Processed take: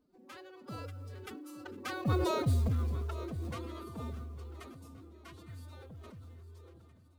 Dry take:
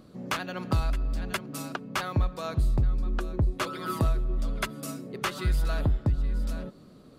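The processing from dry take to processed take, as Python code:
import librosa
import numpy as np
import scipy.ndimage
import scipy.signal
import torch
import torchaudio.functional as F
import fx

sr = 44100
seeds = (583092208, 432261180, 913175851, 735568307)

y = fx.doppler_pass(x, sr, speed_mps=18, closest_m=4.4, pass_at_s=2.36)
y = fx.pitch_keep_formants(y, sr, semitones=11.5)
y = fx.quant_float(y, sr, bits=4)
y = fx.peak_eq(y, sr, hz=330.0, db=3.0, octaves=1.8)
y = fx.echo_swing(y, sr, ms=1426, ratio=1.5, feedback_pct=34, wet_db=-18)
y = fx.sustainer(y, sr, db_per_s=20.0)
y = y * librosa.db_to_amplitude(-3.0)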